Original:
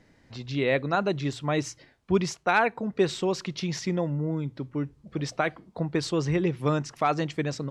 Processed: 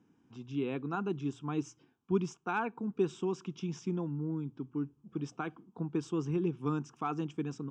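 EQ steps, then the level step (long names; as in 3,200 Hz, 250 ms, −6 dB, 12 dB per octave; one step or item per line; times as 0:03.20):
high-pass filter 280 Hz 12 dB per octave
tilt shelving filter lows +9 dB, about 730 Hz
phaser with its sweep stopped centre 2,900 Hz, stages 8
−4.5 dB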